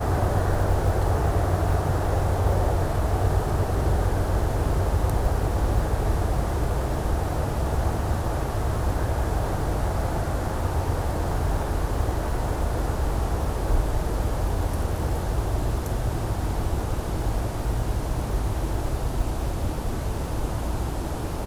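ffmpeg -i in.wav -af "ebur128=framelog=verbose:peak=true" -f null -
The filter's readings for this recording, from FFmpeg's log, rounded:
Integrated loudness:
  I:         -26.3 LUFS
  Threshold: -36.3 LUFS
Loudness range:
  LRA:         4.0 LU
  Threshold: -46.4 LUFS
  LRA low:   -28.2 LUFS
  LRA high:  -24.2 LUFS
True peak:
  Peak:      -10.5 dBFS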